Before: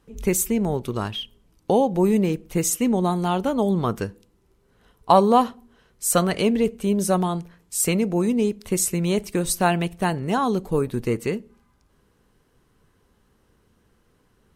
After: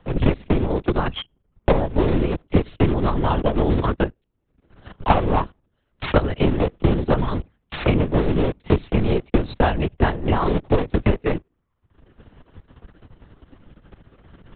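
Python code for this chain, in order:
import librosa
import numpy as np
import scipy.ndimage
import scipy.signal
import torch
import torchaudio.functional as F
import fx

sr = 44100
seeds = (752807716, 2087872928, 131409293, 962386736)

y = fx.cycle_switch(x, sr, every=3, mode='muted')
y = fx.low_shelf(y, sr, hz=200.0, db=5.0)
y = fx.leveller(y, sr, passes=2)
y = fx.transient(y, sr, attack_db=10, sustain_db=-11)
y = fx.lpc_vocoder(y, sr, seeds[0], excitation='whisper', order=10)
y = fx.band_squash(y, sr, depth_pct=70)
y = F.gain(torch.from_numpy(y), -7.0).numpy()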